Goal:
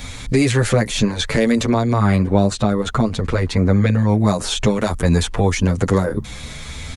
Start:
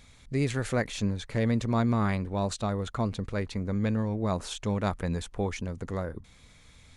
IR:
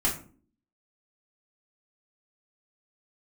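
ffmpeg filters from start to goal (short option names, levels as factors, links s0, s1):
-filter_complex "[0:a]asettb=1/sr,asplit=3[s0][s1][s2];[s0]atrim=end=1.694[s3];[s1]atrim=start=1.69:end=4.09,asetpts=PTS-STARTPTS,afade=t=in:d=0.004:c=qsin,afade=t=out:st=2.396:d=0.004:c=qsin,highshelf=f=4800:g=-10.5[s4];[s2]atrim=start=4.086[s5];[s3][s4]acrossfade=d=0.004:c1=hsin:c2=qsin[s6];[s6][s5]acrossfade=d=0.004:c1=qsin:c2=hsin,acrossover=split=410|5500[s7][s8][s9];[s7]acompressor=threshold=0.01:ratio=4[s10];[s8]acompressor=threshold=0.00562:ratio=4[s11];[s9]acompressor=threshold=0.002:ratio=4[s12];[s10][s11][s12]amix=inputs=3:normalize=0,alimiter=level_in=21.1:limit=0.891:release=50:level=0:latency=1,asplit=2[s13][s14];[s14]adelay=8.4,afreqshift=0.55[s15];[s13][s15]amix=inputs=2:normalize=1"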